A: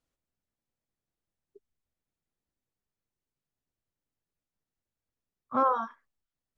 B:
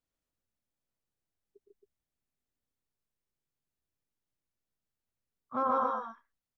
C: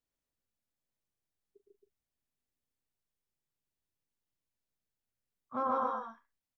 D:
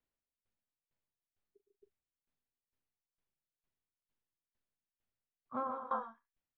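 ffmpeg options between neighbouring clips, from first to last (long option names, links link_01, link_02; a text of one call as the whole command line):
ffmpeg -i in.wav -af "aecho=1:1:113.7|145.8|271.1:0.501|0.891|0.562,volume=-6dB" out.wav
ffmpeg -i in.wav -filter_complex "[0:a]equalizer=frequency=1300:width=7.6:gain=-2.5,asplit=2[link_01][link_02];[link_02]adelay=40,volume=-13dB[link_03];[link_01][link_03]amix=inputs=2:normalize=0,volume=-2.5dB" out.wav
ffmpeg -i in.wav -af "lowpass=3000,aeval=exprs='val(0)*pow(10,-21*if(lt(mod(2.2*n/s,1),2*abs(2.2)/1000),1-mod(2.2*n/s,1)/(2*abs(2.2)/1000),(mod(2.2*n/s,1)-2*abs(2.2)/1000)/(1-2*abs(2.2)/1000))/20)':channel_layout=same,volume=3.5dB" out.wav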